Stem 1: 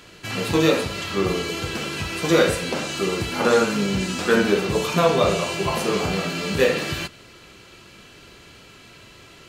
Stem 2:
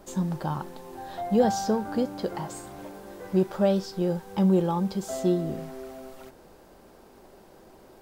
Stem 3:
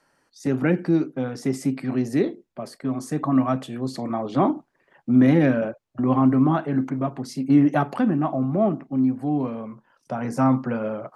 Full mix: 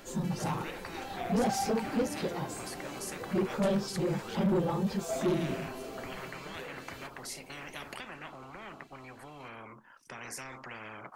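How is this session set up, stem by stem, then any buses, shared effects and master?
-9.5 dB, 0.00 s, no send, treble shelf 10 kHz +7.5 dB; compression 2.5:1, threshold -28 dBFS, peak gain reduction 11 dB; auto duck -9 dB, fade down 0.30 s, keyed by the third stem
-2.0 dB, 0.00 s, no send, phase randomisation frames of 50 ms
-14.0 dB, 0.00 s, no send, graphic EQ 125/500/2000/4000 Hz -4/-7/+4/-5 dB; spectrum-flattening compressor 10:1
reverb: none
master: saturation -23 dBFS, distortion -10 dB

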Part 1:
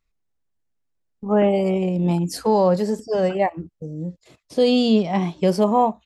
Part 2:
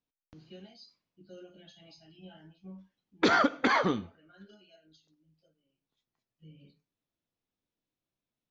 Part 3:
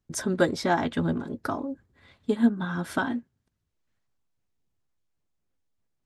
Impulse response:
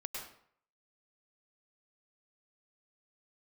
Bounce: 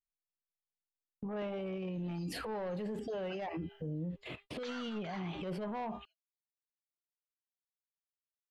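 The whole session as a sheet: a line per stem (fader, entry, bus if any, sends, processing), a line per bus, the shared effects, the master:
-0.5 dB, 0.00 s, bus A, no send, resonant high shelf 4.1 kHz -13 dB, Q 3; de-hum 402.3 Hz, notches 38; saturation -14.5 dBFS, distortion -13 dB
3.79 s -7.5 dB -> 4.17 s -19 dB, 1.40 s, no bus, send -7.5 dB, high-pass 820 Hz 24 dB/octave; treble shelf 5.6 kHz +10.5 dB
mute
bus A: 0.0 dB, compressor with a negative ratio -27 dBFS, ratio -0.5; peak limiter -23.5 dBFS, peak gain reduction 10.5 dB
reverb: on, RT60 0.60 s, pre-delay 95 ms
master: gate -54 dBFS, range -34 dB; peak limiter -33 dBFS, peak gain reduction 11 dB

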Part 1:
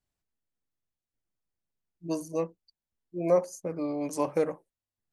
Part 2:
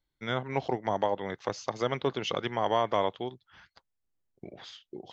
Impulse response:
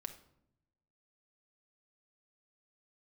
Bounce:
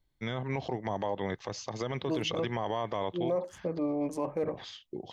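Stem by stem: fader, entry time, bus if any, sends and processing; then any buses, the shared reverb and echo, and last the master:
+1.0 dB, 0.00 s, no send, local Wiener filter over 9 samples; treble shelf 3.7 kHz -11 dB
+1.5 dB, 0.00 s, no send, bass shelf 160 Hz +7.5 dB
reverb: none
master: band-stop 1.4 kHz, Q 8.9; peak limiter -22 dBFS, peak gain reduction 10.5 dB

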